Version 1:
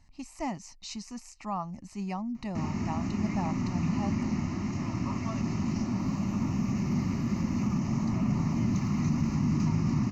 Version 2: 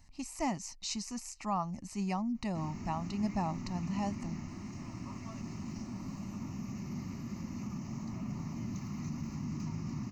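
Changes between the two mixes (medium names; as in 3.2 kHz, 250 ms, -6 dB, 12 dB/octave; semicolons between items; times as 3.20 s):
background -11.5 dB; master: add treble shelf 7.8 kHz +12 dB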